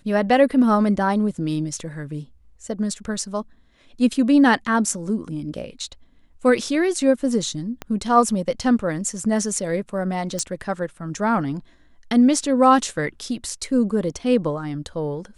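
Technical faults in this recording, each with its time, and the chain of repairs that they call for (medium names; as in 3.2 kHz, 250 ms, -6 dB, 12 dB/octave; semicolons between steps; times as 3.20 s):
7.82 s: pop -15 dBFS
10.39 s: pop -13 dBFS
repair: de-click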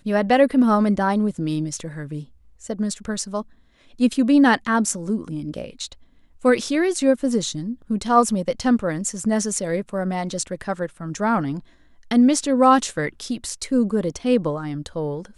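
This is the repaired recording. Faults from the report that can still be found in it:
7.82 s: pop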